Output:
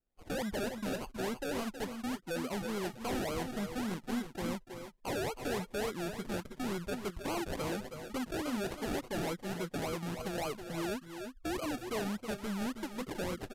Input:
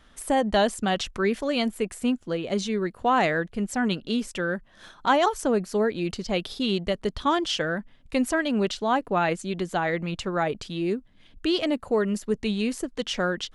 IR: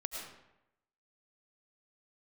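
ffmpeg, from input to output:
-filter_complex "[0:a]afftdn=nr=26:nf=-32,acrusher=samples=34:mix=1:aa=0.000001:lfo=1:lforange=20.4:lforate=3.5,asoftclip=type=hard:threshold=-26dB,asplit=2[a][b];[b]aecho=0:1:319|327:0.299|0.299[c];[a][c]amix=inputs=2:normalize=0,aresample=32000,aresample=44100,volume=-7.5dB"

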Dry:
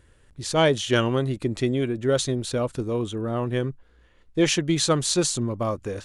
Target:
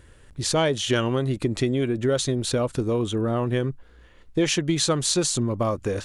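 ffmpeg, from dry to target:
-af "acompressor=threshold=-27dB:ratio=3,volume=6dB"

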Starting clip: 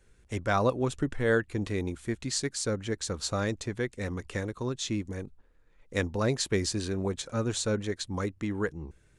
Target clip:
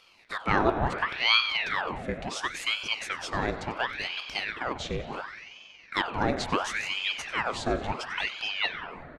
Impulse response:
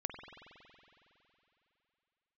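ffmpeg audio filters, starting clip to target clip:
-filter_complex "[0:a]highpass=f=330:p=1,agate=range=-33dB:threshold=-55dB:ratio=3:detection=peak,lowpass=f=3.9k:p=1,acompressor=mode=upward:threshold=-38dB:ratio=2.5,asplit=7[a][b][c][d][e][f][g];[b]adelay=93,afreqshift=-41,volume=-17dB[h];[c]adelay=186,afreqshift=-82,volume=-21.4dB[i];[d]adelay=279,afreqshift=-123,volume=-25.9dB[j];[e]adelay=372,afreqshift=-164,volume=-30.3dB[k];[f]adelay=465,afreqshift=-205,volume=-34.7dB[l];[g]adelay=558,afreqshift=-246,volume=-39.2dB[m];[a][h][i][j][k][l][m]amix=inputs=7:normalize=0,asplit=2[n][o];[1:a]atrim=start_sample=2205,lowpass=4.9k[p];[o][p]afir=irnorm=-1:irlink=0,volume=2.5dB[q];[n][q]amix=inputs=2:normalize=0,aeval=exprs='val(0)*sin(2*PI*1500*n/s+1500*0.9/0.71*sin(2*PI*0.71*n/s))':c=same"

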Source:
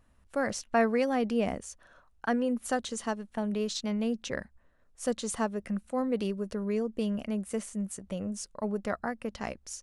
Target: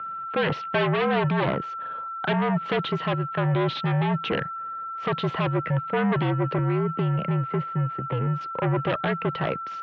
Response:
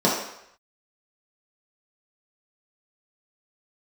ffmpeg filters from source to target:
-filter_complex "[0:a]asettb=1/sr,asplit=3[a][b][c];[a]atrim=end=6.584[d];[b]atrim=start=6.58:end=8.41,asetpts=PTS-STARTPTS,afade=t=in:d=0.004:c=qsin,afade=t=out:st=1.826:d=0.004:c=qsin,acrossover=split=170|430|2300[e][f][g][h];[e]acompressor=threshold=-45dB:ratio=4[i];[f]acompressor=threshold=-37dB:ratio=4[j];[g]acompressor=threshold=-47dB:ratio=4[k];[h]acompressor=threshold=-57dB:ratio=4[l];[i][j][k][l]amix=inputs=4:normalize=0[m];[c]atrim=start=8.406[n];[d][m]acrossfade=d=0.004:c1=hsin:c2=qsin[o];[o][n]acrossfade=d=0.004:c1=qsin:c2=hsin,aeval=exprs='val(0)+0.00562*sin(2*PI*1400*n/s)':c=same,asplit=2[p][q];[q]aeval=exprs='0.237*sin(PI/2*7.94*val(0)/0.237)':c=same,volume=-9.5dB[r];[p][r]amix=inputs=2:normalize=0,highpass=f=160:t=q:w=0.5412,highpass=f=160:t=q:w=1.307,lowpass=f=3.4k:t=q:w=0.5176,lowpass=f=3.4k:t=q:w=0.7071,lowpass=f=3.4k:t=q:w=1.932,afreqshift=-59"

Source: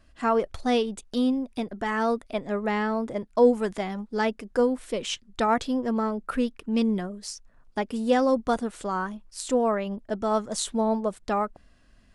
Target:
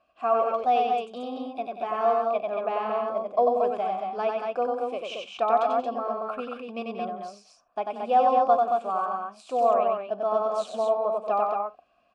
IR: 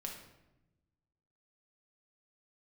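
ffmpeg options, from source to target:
-filter_complex "[0:a]asplit=3[a][b][c];[a]bandpass=f=730:t=q:w=8,volume=0dB[d];[b]bandpass=f=1.09k:t=q:w=8,volume=-6dB[e];[c]bandpass=f=2.44k:t=q:w=8,volume=-9dB[f];[d][e][f]amix=inputs=3:normalize=0,aecho=1:1:93.29|183.7|227.4:0.708|0.282|0.631,asplit=2[g][h];[1:a]atrim=start_sample=2205,atrim=end_sample=3528[i];[h][i]afir=irnorm=-1:irlink=0,volume=-9.5dB[j];[g][j]amix=inputs=2:normalize=0,volume=7dB"

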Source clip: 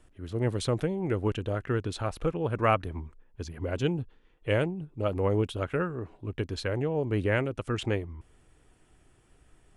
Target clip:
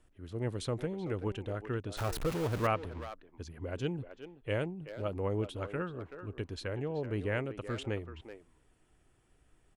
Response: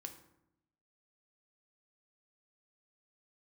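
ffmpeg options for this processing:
-filter_complex "[0:a]asettb=1/sr,asplit=3[a][b][c];[a]atrim=end=1.974[d];[b]atrim=start=1.97:end=2.67,asetpts=PTS-STARTPTS,afade=t=in:d=0.004:c=qsin,afade=t=out:st=0.696:d=0.004:c=qsin,aeval=exprs='val(0)+0.5*0.0473*sgn(val(0))':c=same[e];[c]atrim=start=2.666[f];[d][e]acrossfade=d=0.004:c1=hsin:c2=qsin[g];[g][f]acrossfade=d=0.004:c1=qsin:c2=hsin,asplit=2[h][i];[i]adelay=380,highpass=300,lowpass=3.4k,asoftclip=type=hard:threshold=-20.5dB,volume=-10dB[j];[h][j]amix=inputs=2:normalize=0,volume=-7dB"

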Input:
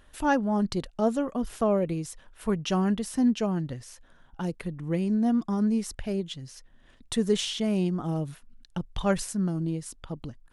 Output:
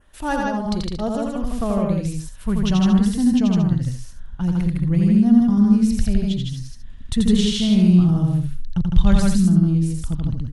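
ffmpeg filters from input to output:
-filter_complex "[0:a]adynamicequalizer=threshold=0.00251:dfrequency=4000:dqfactor=2.1:tfrequency=4000:tqfactor=2.1:attack=5:release=100:ratio=0.375:range=3:mode=boostabove:tftype=bell,asplit=2[a][b];[b]aecho=0:1:84.55|157.4|227.4:0.708|0.794|0.282[c];[a][c]amix=inputs=2:normalize=0,asubboost=boost=10.5:cutoff=140"

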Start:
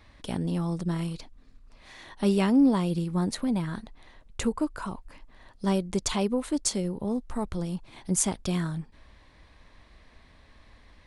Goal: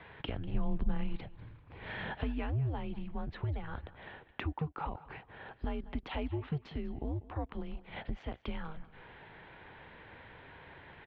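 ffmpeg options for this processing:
-filter_complex "[0:a]acompressor=threshold=-41dB:ratio=5,highpass=f=190:t=q:w=0.5412,highpass=f=190:t=q:w=1.307,lowpass=f=3.2k:t=q:w=0.5176,lowpass=f=3.2k:t=q:w=0.7071,lowpass=f=3.2k:t=q:w=1.932,afreqshift=-150,asettb=1/sr,asplit=3[a][b][c];[a]atrim=end=0.544[d];[b]atrim=start=0.54:end=2.19,asetpts=PTS-STARTPTS,afade=t=in:d=0.004:c=qsin,afade=t=out:st=1.646:d=0.004:c=qsin,lowshelf=f=240:g=11[e];[c]atrim=start=2.186[f];[d][e]acrossfade=d=0.004:c1=hsin:c2=qsin[g];[g][f]acrossfade=d=0.004:c1=qsin:c2=hsin,aecho=1:1:195|390:0.126|0.0352,volume=7.5dB"

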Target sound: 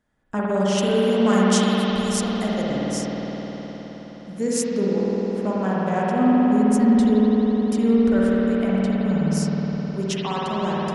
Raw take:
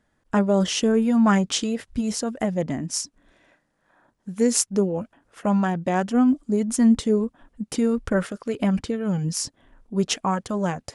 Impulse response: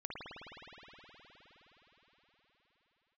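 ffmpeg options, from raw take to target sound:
-filter_complex "[0:a]asettb=1/sr,asplit=3[a][b][c];[a]atrim=end=0.784[d];[b]atrim=start=0.78:end=2.67,asetpts=PTS-STARTPTS,afade=t=in:d=0.004:c=qsin,afade=t=out:st=1.886:d=0.004:c=qsin,aemphasis=mode=production:type=50fm[e];[c]atrim=start=2.666[f];[d][e]acrossfade=d=0.004:c1=hsin:c2=qsin[g];[g][f]acrossfade=d=0.004:c1=qsin:c2=hsin[h];[1:a]atrim=start_sample=2205[i];[h][i]afir=irnorm=-1:irlink=0"

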